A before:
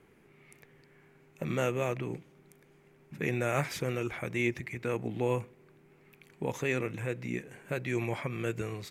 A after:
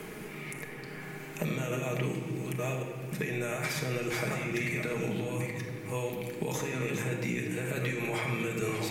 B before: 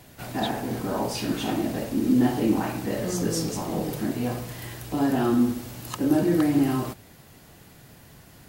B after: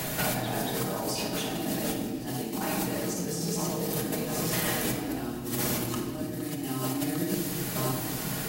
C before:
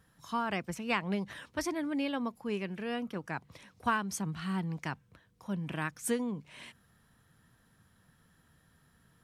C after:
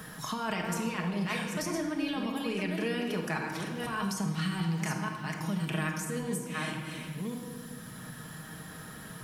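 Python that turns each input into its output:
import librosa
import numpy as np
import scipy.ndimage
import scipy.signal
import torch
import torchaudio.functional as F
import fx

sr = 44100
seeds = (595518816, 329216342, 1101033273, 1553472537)

y = fx.reverse_delay(x, sr, ms=565, wet_db=-9.5)
y = fx.high_shelf(y, sr, hz=4000.0, db=9.0)
y = fx.over_compress(y, sr, threshold_db=-35.0, ratio=-1.0)
y = fx.low_shelf(y, sr, hz=62.0, db=-7.5)
y = y + 0.35 * np.pad(y, (int(6.4 * sr / 1000.0), 0))[:len(y)]
y = fx.room_shoebox(y, sr, seeds[0], volume_m3=1100.0, walls='mixed', distance_m=1.4)
y = fx.band_squash(y, sr, depth_pct=70)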